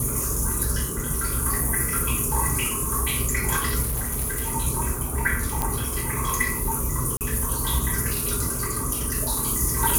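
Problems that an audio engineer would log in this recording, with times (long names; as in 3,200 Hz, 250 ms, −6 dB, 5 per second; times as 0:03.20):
0:03.82–0:04.54: clipping −22.5 dBFS
0:05.62: click
0:07.17–0:07.21: drop-out 38 ms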